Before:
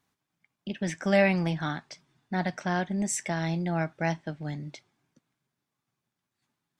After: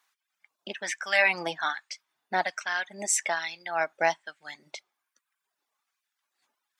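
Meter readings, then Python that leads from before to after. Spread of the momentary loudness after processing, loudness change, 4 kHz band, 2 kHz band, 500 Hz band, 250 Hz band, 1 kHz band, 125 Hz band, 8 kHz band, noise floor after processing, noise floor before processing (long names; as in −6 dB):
20 LU, +1.0 dB, +5.5 dB, +6.0 dB, −2.5 dB, −16.0 dB, +3.5 dB, −21.5 dB, +5.5 dB, −85 dBFS, −85 dBFS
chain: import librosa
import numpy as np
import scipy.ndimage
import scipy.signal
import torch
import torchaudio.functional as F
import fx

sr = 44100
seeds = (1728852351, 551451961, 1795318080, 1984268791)

y = fx.dereverb_blind(x, sr, rt60_s=0.87)
y = fx.filter_lfo_highpass(y, sr, shape='sine', hz=1.2, low_hz=540.0, high_hz=1600.0, q=1.0)
y = y * 10.0 ** (6.0 / 20.0)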